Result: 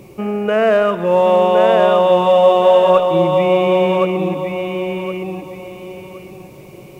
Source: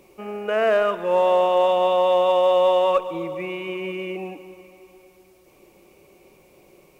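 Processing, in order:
parametric band 130 Hz +15 dB 1.7 octaves
in parallel at +0.5 dB: downward compressor, threshold −28 dBFS, peak gain reduction 14.5 dB
on the sum: feedback echo with a high-pass in the loop 1,067 ms, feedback 28%, high-pass 160 Hz, level −3.5 dB
level +2 dB

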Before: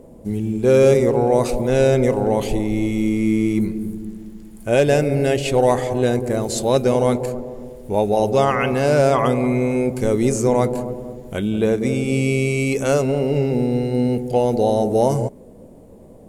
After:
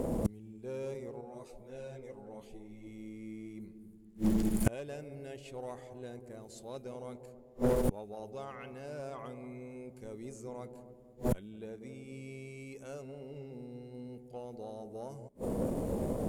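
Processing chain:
gate with flip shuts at −24 dBFS, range −37 dB
harmonic generator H 8 −24 dB, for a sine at −22 dBFS
in parallel at −7 dB: soft clipping −39.5 dBFS, distortion −7 dB
0:01.21–0:02.87: on the sum: string-ensemble chorus
level +7 dB

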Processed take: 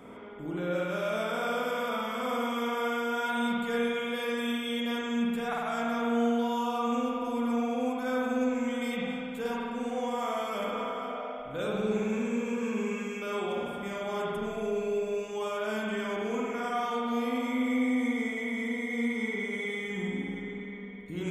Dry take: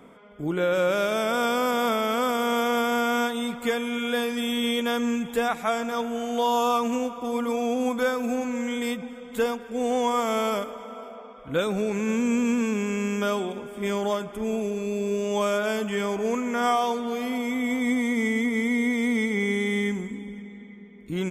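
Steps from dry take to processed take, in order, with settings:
reversed playback
downward compressor 6 to 1, threshold −34 dBFS, peak gain reduction 14.5 dB
reversed playback
spring reverb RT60 2 s, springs 51 ms, chirp 65 ms, DRR −4.5 dB

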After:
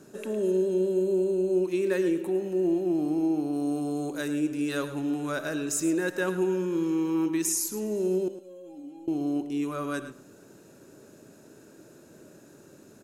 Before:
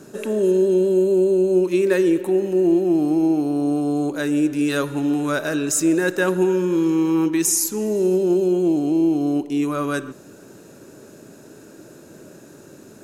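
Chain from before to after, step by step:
0:03.53–0:04.28: high-shelf EQ 4,100 Hz +6.5 dB
0:08.28–0:09.08: tuned comb filter 270 Hz, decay 0.23 s, harmonics all, mix 100%
single-tap delay 108 ms −12.5 dB
level −8.5 dB

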